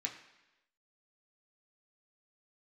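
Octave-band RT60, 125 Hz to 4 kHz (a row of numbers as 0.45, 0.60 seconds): 0.80, 0.95, 1.0, 1.0, 1.0, 1.0 seconds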